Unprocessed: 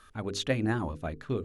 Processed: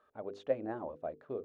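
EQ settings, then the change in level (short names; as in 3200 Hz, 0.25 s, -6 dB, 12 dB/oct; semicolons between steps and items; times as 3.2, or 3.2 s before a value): band-pass 580 Hz, Q 2.7; +1.0 dB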